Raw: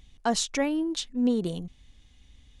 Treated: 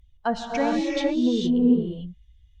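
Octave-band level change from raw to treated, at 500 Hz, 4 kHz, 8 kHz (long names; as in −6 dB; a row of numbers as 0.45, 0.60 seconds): +5.0 dB, −1.5 dB, below −10 dB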